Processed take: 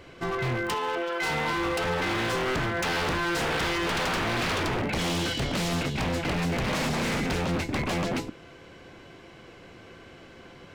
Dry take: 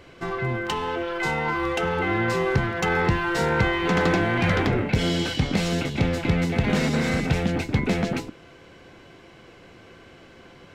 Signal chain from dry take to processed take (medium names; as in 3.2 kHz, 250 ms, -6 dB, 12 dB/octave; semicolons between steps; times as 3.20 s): 0.74–1.30 s: high-pass 360 Hz 12 dB/octave; wavefolder -22.5 dBFS